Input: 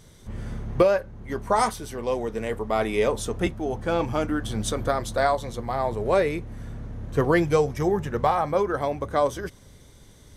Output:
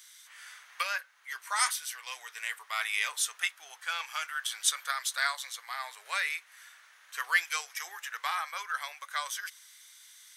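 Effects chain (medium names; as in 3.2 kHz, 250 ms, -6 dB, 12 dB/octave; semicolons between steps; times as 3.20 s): high-pass 1.5 kHz 24 dB/octave; treble shelf 12 kHz +7 dB; trim +3.5 dB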